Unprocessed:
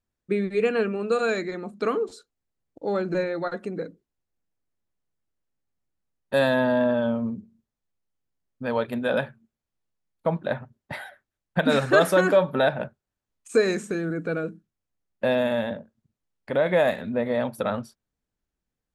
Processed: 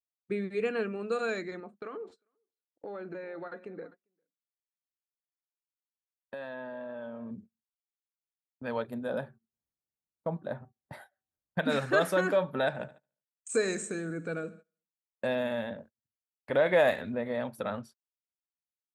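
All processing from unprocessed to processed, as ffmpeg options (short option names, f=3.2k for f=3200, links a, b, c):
-filter_complex "[0:a]asettb=1/sr,asplit=3[a][b][c];[a]atrim=end=1.604[d];[b]atrim=start=1.6:end=7.31,asetpts=PTS-STARTPTS,afade=t=in:d=0.004:c=qsin,afade=t=out:st=5.706:d=0.004:c=qsin,bass=f=250:g=-9,treble=f=4k:g=-15,acompressor=threshold=-28dB:ratio=20:attack=3.2:release=140:knee=1:detection=peak,aecho=1:1:399:0.133,atrim=end_sample=251811[e];[c]atrim=start=7.306[f];[d][e]acrossfade=d=0.004:c1=hsin:c2=qsin[g];[g][f]acrossfade=d=0.004:c1=qsin:c2=hsin,asettb=1/sr,asplit=3[h][i][j];[h]atrim=end=8.824[k];[i]atrim=start=8.82:end=11.58,asetpts=PTS-STARTPTS,afade=t=in:d=0.004:c=qsin,afade=t=out:st=2.756:d=0.004:c=qsin,equalizer=f=2.5k:t=o:w=1.6:g=-11.5,acompressor=mode=upward:threshold=-43dB:ratio=2.5:attack=3.2:release=140:knee=2.83:detection=peak,bandreject=f=382.6:t=h:w=4,bandreject=f=765.2:t=h:w=4,bandreject=f=1.1478k:t=h:w=4[l];[j]atrim=start=11.576[m];[k][l]acrossfade=d=0.004:c1=hsin:c2=qsin[n];[n][m]acrossfade=d=0.004:c1=qsin:c2=hsin,asettb=1/sr,asplit=3[o][p][q];[o]atrim=end=12.674[r];[p]atrim=start=12.67:end=15.27,asetpts=PTS-STARTPTS,afade=t=in:d=0.004:c=qsin,afade=t=out:st=2.596:d=0.004:c=qsin,lowpass=f=8k:t=q:w=5.6,aecho=1:1:73|146|219|292|365:0.112|0.0662|0.0391|0.023|0.0136,atrim=end_sample=114660[s];[q]atrim=start=15.266[t];[r][s]acrossfade=d=0.004:c1=hsin:c2=qsin[u];[u][t]acrossfade=d=0.004:c1=qsin:c2=hsin,asettb=1/sr,asplit=3[v][w][x];[v]atrim=end=15.784[y];[w]atrim=start=15.78:end=17.15,asetpts=PTS-STARTPTS,afade=t=in:d=0.004:c=qsin,afade=t=out:st=1.366:d=0.004:c=qsin,equalizer=f=190:t=o:w=0.69:g=-6.5,acontrast=43[z];[x]atrim=start=17.146[aa];[y][z]acrossfade=d=0.004:c1=hsin:c2=qsin[ab];[ab][aa]acrossfade=d=0.004:c1=qsin:c2=hsin,agate=range=-23dB:threshold=-42dB:ratio=16:detection=peak,highpass=45,equalizer=f=1.8k:w=1.5:g=2,volume=-8dB"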